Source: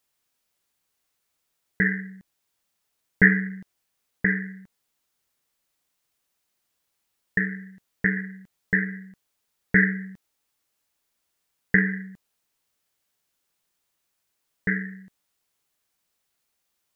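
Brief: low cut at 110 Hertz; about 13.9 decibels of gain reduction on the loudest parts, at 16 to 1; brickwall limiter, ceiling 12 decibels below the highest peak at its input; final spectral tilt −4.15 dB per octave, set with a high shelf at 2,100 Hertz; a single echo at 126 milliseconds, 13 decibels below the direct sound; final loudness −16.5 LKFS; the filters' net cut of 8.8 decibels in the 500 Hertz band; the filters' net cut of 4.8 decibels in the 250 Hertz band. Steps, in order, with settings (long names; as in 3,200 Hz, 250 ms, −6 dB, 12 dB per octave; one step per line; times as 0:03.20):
high-pass filter 110 Hz
parametric band 250 Hz −5.5 dB
parametric band 500 Hz −8.5 dB
high-shelf EQ 2,100 Hz −4.5 dB
downward compressor 16 to 1, threshold −27 dBFS
brickwall limiter −25 dBFS
single-tap delay 126 ms −13 dB
level +23 dB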